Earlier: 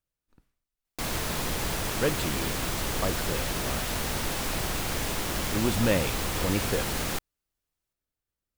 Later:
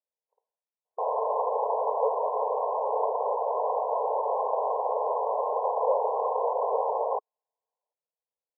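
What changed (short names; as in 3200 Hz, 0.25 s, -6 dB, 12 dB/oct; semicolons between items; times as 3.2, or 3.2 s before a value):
background +11.5 dB; master: add brick-wall FIR band-pass 420–1100 Hz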